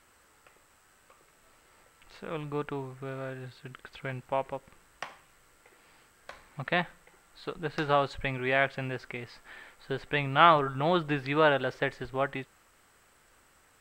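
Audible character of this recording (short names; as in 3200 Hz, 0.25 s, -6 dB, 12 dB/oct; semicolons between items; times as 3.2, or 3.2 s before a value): noise floor -63 dBFS; spectral tilt -3.5 dB/oct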